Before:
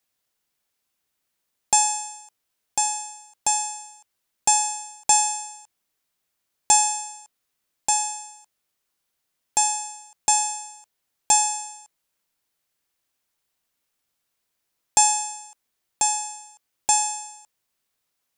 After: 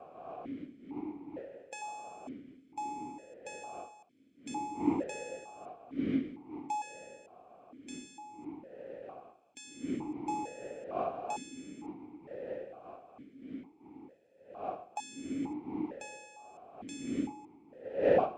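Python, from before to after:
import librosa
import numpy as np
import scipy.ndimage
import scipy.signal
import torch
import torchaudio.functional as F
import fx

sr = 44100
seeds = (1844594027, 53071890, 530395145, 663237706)

y = fx.bin_compress(x, sr, power=0.6)
y = fx.dmg_wind(y, sr, seeds[0], corner_hz=440.0, level_db=-21.0)
y = fx.vowel_held(y, sr, hz=2.2)
y = y * librosa.db_to_amplitude(-7.0)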